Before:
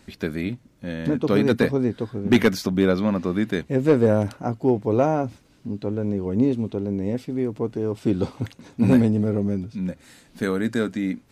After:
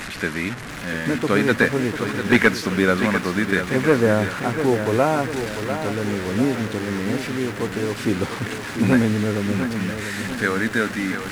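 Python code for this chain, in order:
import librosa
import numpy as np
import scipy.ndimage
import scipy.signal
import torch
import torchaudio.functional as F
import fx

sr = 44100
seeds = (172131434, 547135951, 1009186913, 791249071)

y = fx.delta_mod(x, sr, bps=64000, step_db=-29.0)
y = fx.peak_eq(y, sr, hz=1700.0, db=12.0, octaves=1.4)
y = fx.echo_crushed(y, sr, ms=696, feedback_pct=55, bits=7, wet_db=-8.5)
y = F.gain(torch.from_numpy(y), -1.0).numpy()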